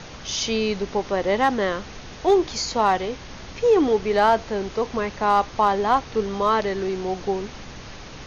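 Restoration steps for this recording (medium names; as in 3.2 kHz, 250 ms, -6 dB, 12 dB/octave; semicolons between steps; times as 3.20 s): clip repair -9.5 dBFS; de-hum 64.2 Hz, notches 4; noise print and reduce 28 dB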